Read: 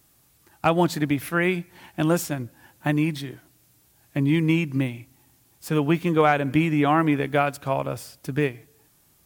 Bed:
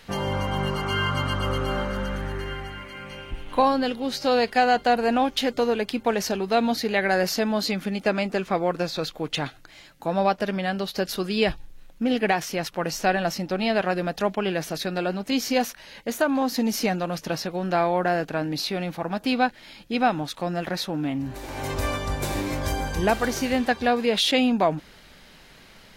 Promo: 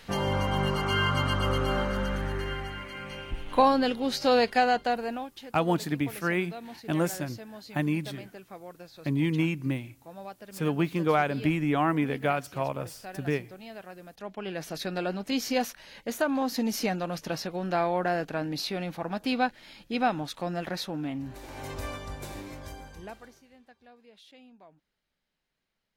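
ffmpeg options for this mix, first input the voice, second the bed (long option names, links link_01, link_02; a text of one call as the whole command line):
ffmpeg -i stem1.wav -i stem2.wav -filter_complex "[0:a]adelay=4900,volume=-5.5dB[link_01];[1:a]volume=15dB,afade=type=out:start_time=4.36:duration=0.96:silence=0.105925,afade=type=in:start_time=14.14:duration=0.76:silence=0.158489,afade=type=out:start_time=20.55:duration=2.87:silence=0.0354813[link_02];[link_01][link_02]amix=inputs=2:normalize=0" out.wav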